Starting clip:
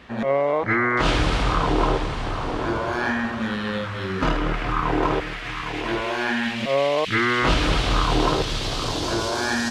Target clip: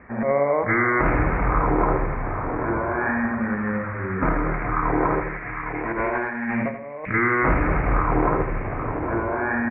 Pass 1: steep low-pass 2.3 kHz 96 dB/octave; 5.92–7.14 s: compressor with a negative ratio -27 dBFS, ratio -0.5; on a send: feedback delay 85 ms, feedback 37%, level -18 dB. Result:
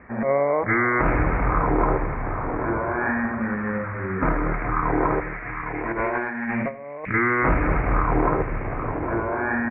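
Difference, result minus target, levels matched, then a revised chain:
echo-to-direct -9 dB
steep low-pass 2.3 kHz 96 dB/octave; 5.92–7.14 s: compressor with a negative ratio -27 dBFS, ratio -0.5; on a send: feedback delay 85 ms, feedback 37%, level -9 dB

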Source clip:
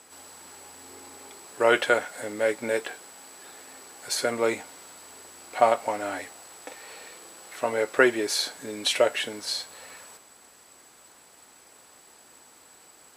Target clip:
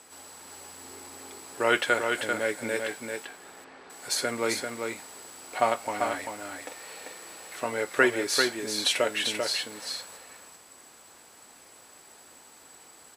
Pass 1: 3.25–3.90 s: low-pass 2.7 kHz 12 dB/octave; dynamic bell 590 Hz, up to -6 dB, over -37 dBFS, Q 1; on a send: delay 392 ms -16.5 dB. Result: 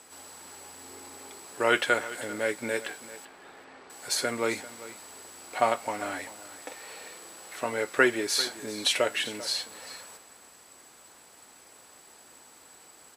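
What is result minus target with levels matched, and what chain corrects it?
echo-to-direct -11.5 dB
3.25–3.90 s: low-pass 2.7 kHz 12 dB/octave; dynamic bell 590 Hz, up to -6 dB, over -37 dBFS, Q 1; on a send: delay 392 ms -5 dB

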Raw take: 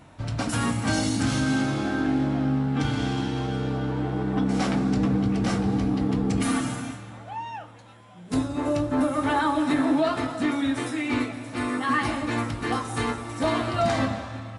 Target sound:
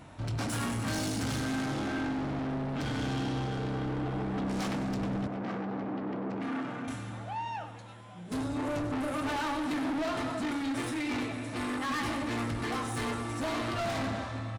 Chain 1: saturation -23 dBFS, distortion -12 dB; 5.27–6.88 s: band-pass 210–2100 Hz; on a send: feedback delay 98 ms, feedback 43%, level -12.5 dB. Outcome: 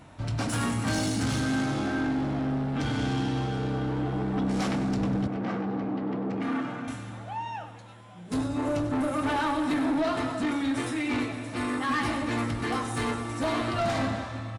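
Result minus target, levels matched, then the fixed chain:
saturation: distortion -6 dB
saturation -30.5 dBFS, distortion -7 dB; 5.27–6.88 s: band-pass 210–2100 Hz; on a send: feedback delay 98 ms, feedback 43%, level -12.5 dB

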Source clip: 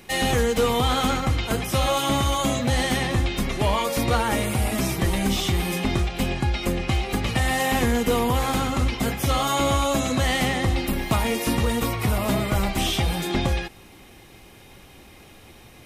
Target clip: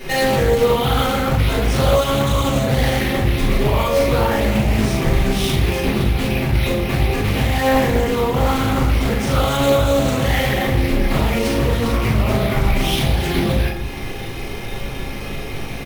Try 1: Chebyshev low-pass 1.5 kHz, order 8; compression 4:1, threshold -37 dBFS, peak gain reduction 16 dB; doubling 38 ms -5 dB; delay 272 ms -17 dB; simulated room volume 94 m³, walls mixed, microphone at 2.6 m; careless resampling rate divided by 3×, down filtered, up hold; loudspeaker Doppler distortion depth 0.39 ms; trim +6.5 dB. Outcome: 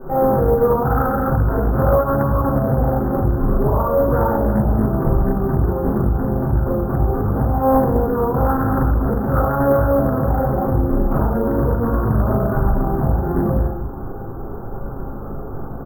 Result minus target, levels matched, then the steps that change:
2 kHz band -10.5 dB
remove: Chebyshev low-pass 1.5 kHz, order 8

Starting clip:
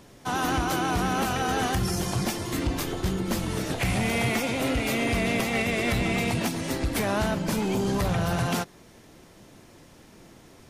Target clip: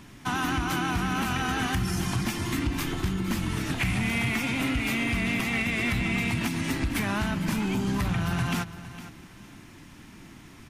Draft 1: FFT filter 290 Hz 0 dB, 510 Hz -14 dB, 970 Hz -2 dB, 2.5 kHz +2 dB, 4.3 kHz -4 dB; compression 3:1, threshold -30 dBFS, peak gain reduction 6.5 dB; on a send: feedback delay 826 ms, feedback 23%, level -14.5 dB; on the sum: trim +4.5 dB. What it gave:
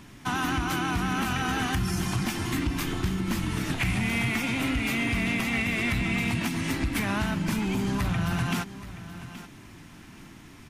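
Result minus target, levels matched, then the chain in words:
echo 367 ms late
FFT filter 290 Hz 0 dB, 510 Hz -14 dB, 970 Hz -2 dB, 2.5 kHz +2 dB, 4.3 kHz -4 dB; compression 3:1, threshold -30 dBFS, peak gain reduction 6.5 dB; on a send: feedback delay 459 ms, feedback 23%, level -14.5 dB; on the sum: trim +4.5 dB

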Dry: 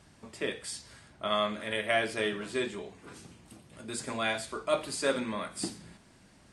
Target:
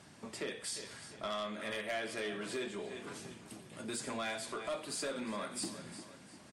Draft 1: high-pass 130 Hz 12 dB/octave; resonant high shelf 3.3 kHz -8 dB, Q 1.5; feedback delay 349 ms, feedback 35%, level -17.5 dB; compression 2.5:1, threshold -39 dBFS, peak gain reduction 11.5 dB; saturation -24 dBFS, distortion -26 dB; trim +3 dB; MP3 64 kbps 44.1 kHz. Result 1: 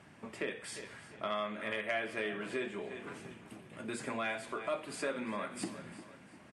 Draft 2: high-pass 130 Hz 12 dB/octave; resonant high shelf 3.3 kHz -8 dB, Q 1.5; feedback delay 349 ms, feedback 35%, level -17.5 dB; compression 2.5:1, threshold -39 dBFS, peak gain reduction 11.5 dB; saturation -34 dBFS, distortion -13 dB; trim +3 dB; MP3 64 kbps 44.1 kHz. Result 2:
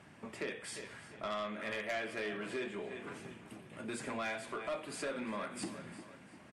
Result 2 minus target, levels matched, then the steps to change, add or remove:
8 kHz band -6.0 dB
remove: resonant high shelf 3.3 kHz -8 dB, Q 1.5

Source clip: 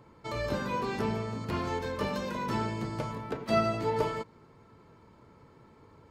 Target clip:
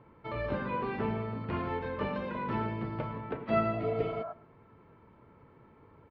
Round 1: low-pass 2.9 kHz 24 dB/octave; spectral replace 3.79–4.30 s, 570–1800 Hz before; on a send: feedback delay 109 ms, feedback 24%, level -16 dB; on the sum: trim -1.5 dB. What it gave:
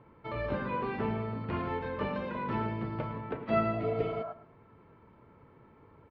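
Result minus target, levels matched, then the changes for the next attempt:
echo-to-direct +6 dB
change: feedback delay 109 ms, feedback 24%, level -22 dB

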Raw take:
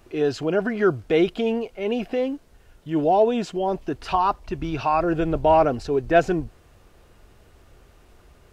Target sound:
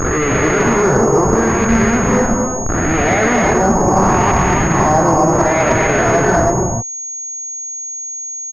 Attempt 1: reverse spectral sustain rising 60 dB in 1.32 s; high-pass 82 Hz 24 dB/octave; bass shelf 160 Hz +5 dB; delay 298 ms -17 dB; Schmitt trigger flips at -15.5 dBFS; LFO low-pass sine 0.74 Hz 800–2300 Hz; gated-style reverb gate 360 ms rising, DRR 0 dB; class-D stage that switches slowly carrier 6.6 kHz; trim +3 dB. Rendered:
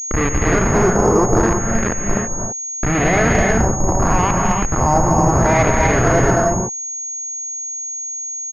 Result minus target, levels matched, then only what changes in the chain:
Schmitt trigger: distortion +6 dB
change: Schmitt trigger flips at -22 dBFS

